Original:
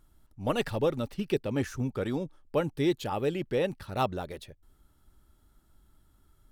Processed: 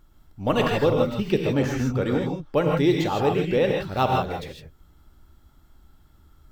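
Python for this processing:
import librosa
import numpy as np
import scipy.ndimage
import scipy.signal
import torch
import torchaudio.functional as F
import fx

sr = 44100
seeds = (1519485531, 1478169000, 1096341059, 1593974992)

y = fx.peak_eq(x, sr, hz=10000.0, db=-12.5, octaves=0.51)
y = fx.rev_gated(y, sr, seeds[0], gate_ms=180, shape='rising', drr_db=0.0)
y = y * 10.0 ** (5.5 / 20.0)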